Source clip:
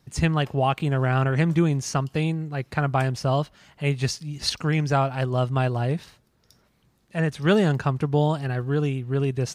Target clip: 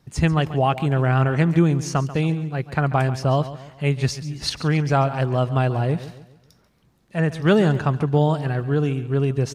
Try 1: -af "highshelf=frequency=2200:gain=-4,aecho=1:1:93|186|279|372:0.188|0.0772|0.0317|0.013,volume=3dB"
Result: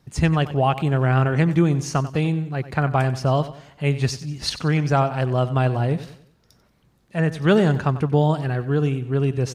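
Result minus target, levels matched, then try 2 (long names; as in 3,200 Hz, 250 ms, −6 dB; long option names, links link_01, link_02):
echo 46 ms early
-af "highshelf=frequency=2200:gain=-4,aecho=1:1:139|278|417|556:0.188|0.0772|0.0317|0.013,volume=3dB"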